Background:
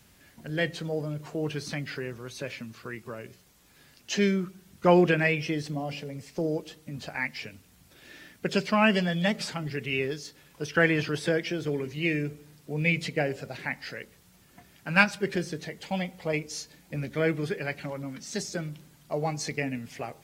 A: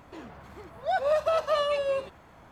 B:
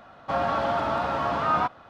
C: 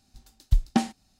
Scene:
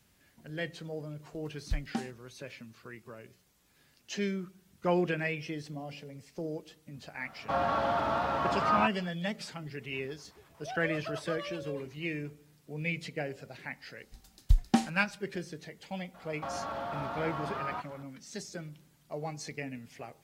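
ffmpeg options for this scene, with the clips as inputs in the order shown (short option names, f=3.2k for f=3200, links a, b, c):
-filter_complex "[3:a]asplit=2[a][b];[2:a]asplit=2[c][d];[0:a]volume=-8.5dB[e];[1:a]acrossover=split=670[f][g];[f]aeval=exprs='val(0)*(1-1/2+1/2*cos(2*PI*8.2*n/s))':c=same[h];[g]aeval=exprs='val(0)*(1-1/2-1/2*cos(2*PI*8.2*n/s))':c=same[i];[h][i]amix=inputs=2:normalize=0[j];[d]acompressor=threshold=-29dB:ratio=6:attack=3.2:release=140:knee=1:detection=peak[k];[a]atrim=end=1.19,asetpts=PTS-STARTPTS,volume=-12dB,afade=t=in:d=0.004:c=hsin,afade=t=out:st=1.186:d=0.004:c=hsin,adelay=1190[l];[c]atrim=end=1.89,asetpts=PTS-STARTPTS,volume=-4dB,afade=t=in:d=0.004:c=hsin,afade=t=out:st=1.886:d=0.004:c=hsin,adelay=7200[m];[j]atrim=end=2.51,asetpts=PTS-STARTPTS,volume=-9dB,afade=t=in:d=0.004:c=hsin,afade=t=out:st=2.506:d=0.004:c=hsin,adelay=9790[n];[b]atrim=end=1.19,asetpts=PTS-STARTPTS,volume=-2.5dB,afade=t=in:d=0.004:c=hsin,afade=t=out:st=1.186:d=0.004:c=hsin,adelay=13980[o];[k]atrim=end=1.89,asetpts=PTS-STARTPTS,volume=-4.5dB,afade=t=in:d=0.004:c=hsin,afade=t=out:st=1.886:d=0.004:c=hsin,adelay=16140[p];[e][l][m][n][o][p]amix=inputs=6:normalize=0"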